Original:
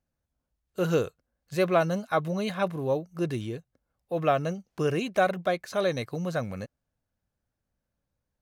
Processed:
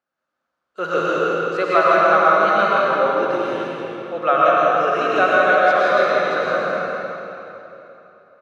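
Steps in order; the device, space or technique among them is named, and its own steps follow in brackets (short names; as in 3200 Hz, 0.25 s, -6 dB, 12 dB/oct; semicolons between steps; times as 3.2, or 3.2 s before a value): station announcement (BPF 410–4200 Hz; bell 1300 Hz +11.5 dB 0.45 oct; loudspeakers at several distances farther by 22 m -11 dB, 57 m -5 dB; reverb RT60 3.3 s, pre-delay 94 ms, DRR -6 dB); gain +2.5 dB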